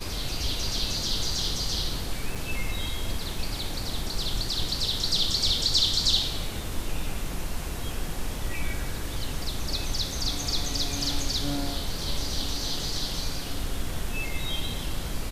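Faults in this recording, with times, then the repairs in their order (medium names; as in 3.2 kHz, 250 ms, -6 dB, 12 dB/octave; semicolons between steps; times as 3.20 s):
2.35–2.36 s: dropout 6.1 ms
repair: interpolate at 2.35 s, 6.1 ms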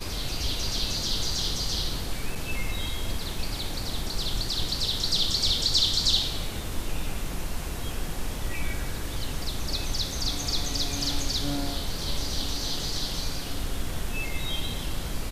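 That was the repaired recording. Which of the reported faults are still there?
nothing left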